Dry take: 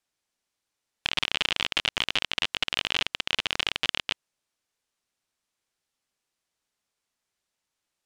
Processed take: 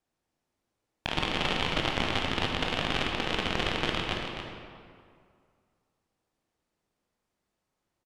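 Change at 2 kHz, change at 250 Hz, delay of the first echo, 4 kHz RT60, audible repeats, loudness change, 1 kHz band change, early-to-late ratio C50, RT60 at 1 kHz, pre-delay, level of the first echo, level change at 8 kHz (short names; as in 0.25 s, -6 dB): -2.0 dB, +11.0 dB, 0.279 s, 1.4 s, 1, -2.5 dB, +4.5 dB, 0.5 dB, 2.2 s, 16 ms, -8.0 dB, -5.5 dB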